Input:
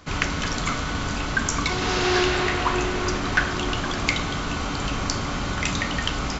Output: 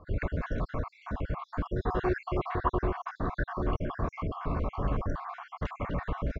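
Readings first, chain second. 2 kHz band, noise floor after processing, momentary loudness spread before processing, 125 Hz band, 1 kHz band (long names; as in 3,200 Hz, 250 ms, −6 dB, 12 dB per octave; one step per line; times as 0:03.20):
−16.5 dB, −64 dBFS, 6 LU, −4.5 dB, −8.0 dB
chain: time-frequency cells dropped at random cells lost 55%
low-pass filter 1,000 Hz 12 dB per octave
comb filter 1.8 ms, depth 37%
level −2 dB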